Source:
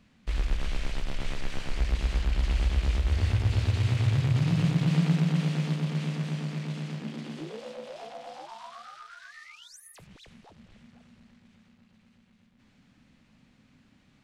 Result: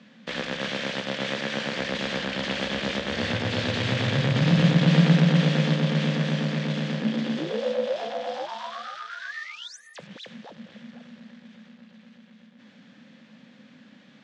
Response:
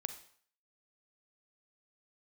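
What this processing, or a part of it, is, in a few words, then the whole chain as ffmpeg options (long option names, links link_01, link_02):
television speaker: -af "highpass=frequency=160:width=0.5412,highpass=frequency=160:width=1.3066,equalizer=frequency=220:width_type=q:width=4:gain=6,equalizer=frequency=370:width_type=q:width=4:gain=-3,equalizer=frequency=530:width_type=q:width=4:gain=10,equalizer=frequency=1700:width_type=q:width=4:gain=7,equalizer=frequency=3400:width_type=q:width=4:gain=6,lowpass=frequency=6600:width=0.5412,lowpass=frequency=6600:width=1.3066,volume=7.5dB"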